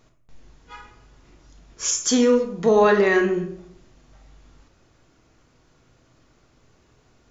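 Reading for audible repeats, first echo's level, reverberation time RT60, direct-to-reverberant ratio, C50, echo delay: no echo audible, no echo audible, 0.70 s, 2.5 dB, 8.0 dB, no echo audible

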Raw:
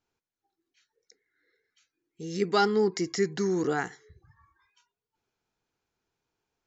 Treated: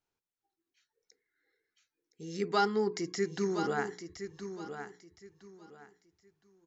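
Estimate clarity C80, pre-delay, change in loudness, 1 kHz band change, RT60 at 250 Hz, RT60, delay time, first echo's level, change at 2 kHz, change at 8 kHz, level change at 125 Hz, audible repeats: no reverb audible, no reverb audible, −6.5 dB, −3.0 dB, no reverb audible, no reverb audible, 1,016 ms, −9.5 dB, −3.5 dB, can't be measured, −5.5 dB, 3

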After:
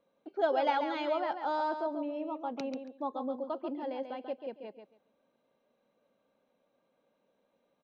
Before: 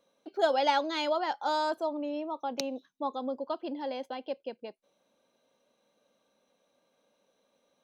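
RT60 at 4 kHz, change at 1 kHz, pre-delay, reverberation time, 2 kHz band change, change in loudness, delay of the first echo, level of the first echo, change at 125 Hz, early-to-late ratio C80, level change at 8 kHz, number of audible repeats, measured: no reverb audible, −2.5 dB, no reverb audible, no reverb audible, −4.0 dB, −2.5 dB, 139 ms, −7.5 dB, can't be measured, no reverb audible, can't be measured, 2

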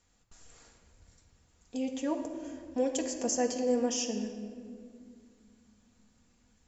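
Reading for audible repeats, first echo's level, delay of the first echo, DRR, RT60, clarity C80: no echo audible, no echo audible, no echo audible, 1.0 dB, 2.2 s, 7.5 dB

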